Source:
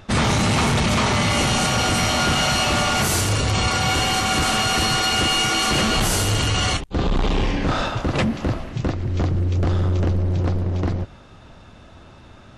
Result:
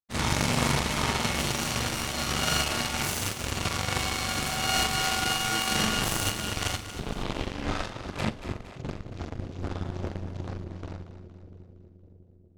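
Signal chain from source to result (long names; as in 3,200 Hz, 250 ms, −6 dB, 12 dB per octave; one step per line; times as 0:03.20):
flutter between parallel walls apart 7.2 metres, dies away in 0.56 s
power curve on the samples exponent 3
echo with a time of its own for lows and highs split 530 Hz, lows 600 ms, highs 232 ms, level −11.5 dB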